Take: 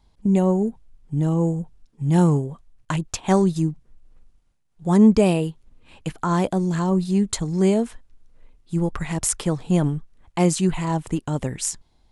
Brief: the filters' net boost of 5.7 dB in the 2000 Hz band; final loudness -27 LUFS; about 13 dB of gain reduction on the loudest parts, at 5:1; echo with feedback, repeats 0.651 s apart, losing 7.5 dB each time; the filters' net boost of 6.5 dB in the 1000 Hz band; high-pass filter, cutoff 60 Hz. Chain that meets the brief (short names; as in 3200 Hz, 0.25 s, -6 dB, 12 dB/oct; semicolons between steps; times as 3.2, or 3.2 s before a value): HPF 60 Hz; bell 1000 Hz +7 dB; bell 2000 Hz +5 dB; compressor 5:1, threshold -24 dBFS; feedback echo 0.651 s, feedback 42%, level -7.5 dB; gain +1.5 dB